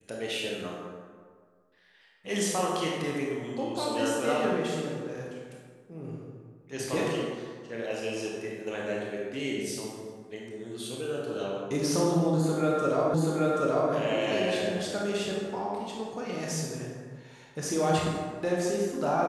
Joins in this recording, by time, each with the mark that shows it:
13.14 s: repeat of the last 0.78 s

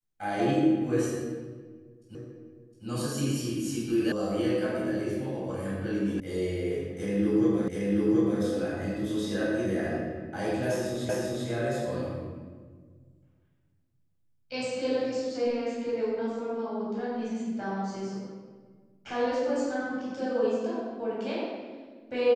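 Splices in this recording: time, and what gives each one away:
2.15 s: repeat of the last 0.71 s
4.12 s: sound stops dead
6.20 s: sound stops dead
7.68 s: repeat of the last 0.73 s
11.09 s: repeat of the last 0.39 s

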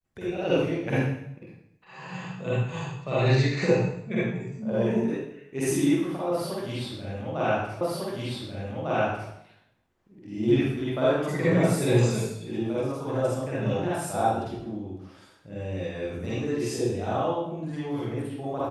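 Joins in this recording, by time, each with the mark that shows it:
7.81 s: repeat of the last 1.5 s

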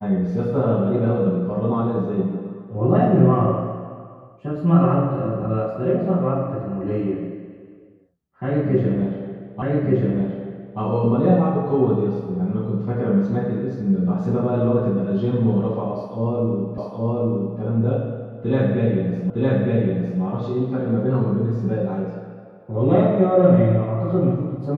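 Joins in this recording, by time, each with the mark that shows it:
9.62 s: repeat of the last 1.18 s
16.78 s: repeat of the last 0.82 s
19.30 s: repeat of the last 0.91 s

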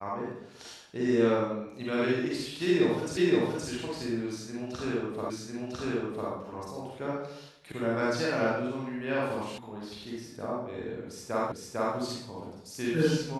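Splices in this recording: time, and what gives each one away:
3.17 s: repeat of the last 0.52 s
5.30 s: repeat of the last 1 s
7.72 s: sound stops dead
9.58 s: sound stops dead
11.52 s: repeat of the last 0.45 s

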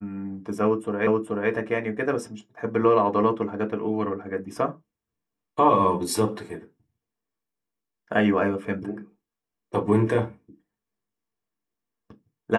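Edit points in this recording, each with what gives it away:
1.07 s: repeat of the last 0.43 s

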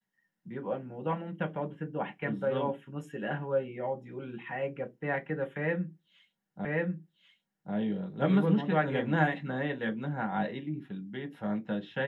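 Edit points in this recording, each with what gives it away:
6.65 s: repeat of the last 1.09 s

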